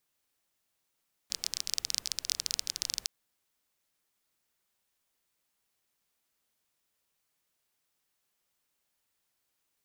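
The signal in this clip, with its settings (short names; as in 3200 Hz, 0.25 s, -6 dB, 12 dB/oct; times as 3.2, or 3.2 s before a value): rain from filtered ticks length 1.76 s, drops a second 21, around 5100 Hz, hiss -21 dB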